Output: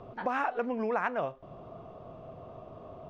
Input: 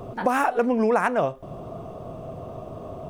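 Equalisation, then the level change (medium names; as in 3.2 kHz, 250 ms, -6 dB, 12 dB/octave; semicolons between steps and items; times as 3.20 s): distance through air 220 m; tilt shelf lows -4 dB, about 760 Hz; -8.0 dB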